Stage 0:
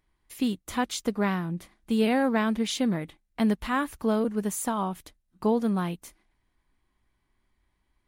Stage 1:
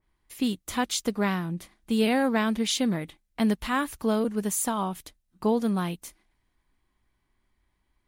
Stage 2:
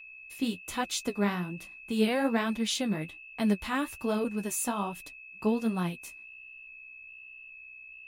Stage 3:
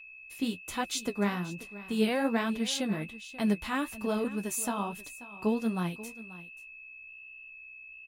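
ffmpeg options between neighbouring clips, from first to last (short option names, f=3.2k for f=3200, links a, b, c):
-af "adynamicequalizer=threshold=0.00631:dfrequency=2500:dqfactor=0.7:tfrequency=2500:tqfactor=0.7:attack=5:release=100:ratio=0.375:range=2.5:mode=boostabove:tftype=highshelf"
-af "aeval=exprs='val(0)+0.00794*sin(2*PI*2600*n/s)':c=same,flanger=delay=5.2:depth=10:regen=31:speed=1.2:shape=triangular"
-af "aecho=1:1:535:0.141,volume=-1dB"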